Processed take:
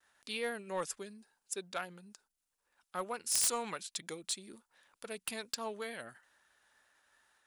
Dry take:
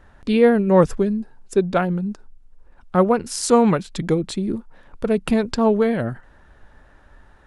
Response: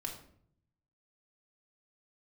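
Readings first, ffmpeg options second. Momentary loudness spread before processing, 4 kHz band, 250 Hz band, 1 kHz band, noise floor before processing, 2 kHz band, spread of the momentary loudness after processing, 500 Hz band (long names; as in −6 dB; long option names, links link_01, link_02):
13 LU, −6.5 dB, −30.0 dB, −18.0 dB, −52 dBFS, −12.5 dB, 17 LU, −24.0 dB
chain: -af "agate=range=-33dB:threshold=-48dB:ratio=3:detection=peak,aderivative,aeval=exprs='0.376*(cos(1*acos(clip(val(0)/0.376,-1,1)))-cos(1*PI/2))+0.15*(cos(3*acos(clip(val(0)/0.376,-1,1)))-cos(3*PI/2))+0.0422*(cos(7*acos(clip(val(0)/0.376,-1,1)))-cos(7*PI/2))':channel_layout=same"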